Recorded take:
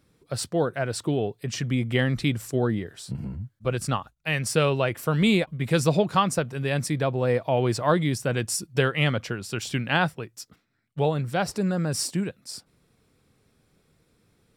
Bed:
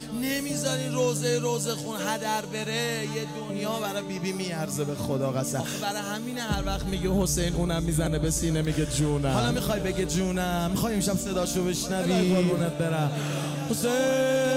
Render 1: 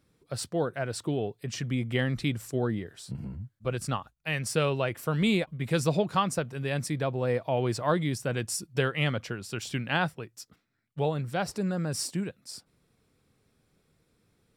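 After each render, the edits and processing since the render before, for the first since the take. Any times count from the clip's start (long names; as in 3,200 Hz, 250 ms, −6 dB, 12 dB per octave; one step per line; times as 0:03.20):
level −4.5 dB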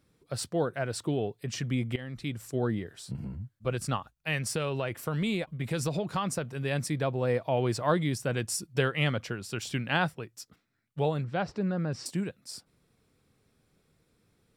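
0:01.96–0:02.69: fade in, from −17 dB
0:04.38–0:06.59: downward compressor 4 to 1, threshold −26 dBFS
0:11.24–0:12.06: high-frequency loss of the air 190 metres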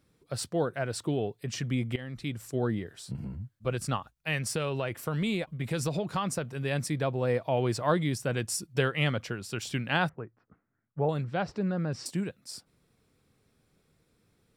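0:10.09–0:11.09: low-pass filter 1,600 Hz 24 dB per octave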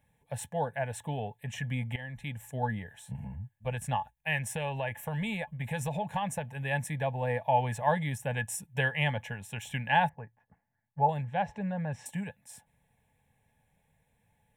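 phaser with its sweep stopped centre 1,300 Hz, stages 6
hollow resonant body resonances 860/1,700 Hz, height 15 dB, ringing for 65 ms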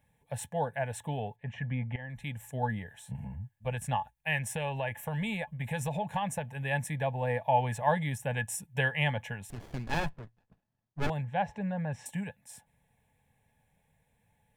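0:01.36–0:02.10: low-pass filter 2,000 Hz
0:09.50–0:11.10: windowed peak hold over 33 samples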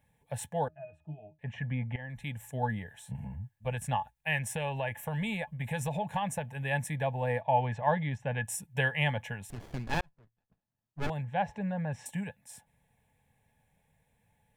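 0:00.68–0:01.39: resonances in every octave D#, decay 0.18 s
0:07.41–0:08.45: high-frequency loss of the air 180 metres
0:10.01–0:11.40: fade in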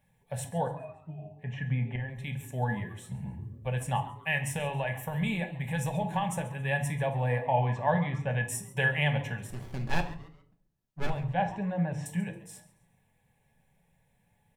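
echo with shifted repeats 137 ms, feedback 31%, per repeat +140 Hz, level −18.5 dB
rectangular room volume 480 cubic metres, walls furnished, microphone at 1.1 metres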